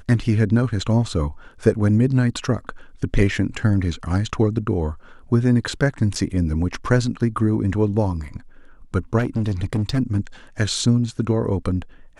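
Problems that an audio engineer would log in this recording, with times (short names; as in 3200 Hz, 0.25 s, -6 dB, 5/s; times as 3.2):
6.15–6.16 gap 6.9 ms
9.18–9.99 clipped -17 dBFS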